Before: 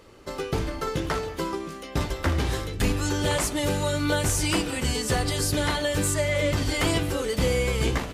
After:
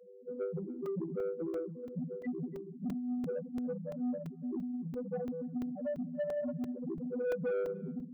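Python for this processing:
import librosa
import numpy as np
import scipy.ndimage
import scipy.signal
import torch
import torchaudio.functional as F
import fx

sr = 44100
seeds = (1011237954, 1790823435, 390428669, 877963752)

y = fx.chord_vocoder(x, sr, chord='minor triad', root=52)
y = fx.dynamic_eq(y, sr, hz=2300.0, q=0.87, threshold_db=-45.0, ratio=4.0, max_db=4)
y = fx.spec_topn(y, sr, count=2)
y = fx.rider(y, sr, range_db=4, speed_s=2.0)
y = scipy.signal.sosfilt(scipy.signal.butter(2, 300.0, 'highpass', fs=sr, output='sos'), y)
y = 10.0 ** (-30.5 / 20.0) * np.tanh(y / 10.0 ** (-30.5 / 20.0))
y = y + 10.0 ** (-22.5 / 20.0) * np.pad(y, (int(286 * sr / 1000.0), 0))[:len(y)]
y = fx.buffer_crackle(y, sr, first_s=0.86, period_s=0.34, block=128, kind='zero')
y = y * 10.0 ** (1.5 / 20.0)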